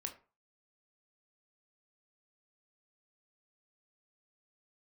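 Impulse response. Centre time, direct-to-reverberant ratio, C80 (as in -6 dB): 12 ms, 3.5 dB, 18.0 dB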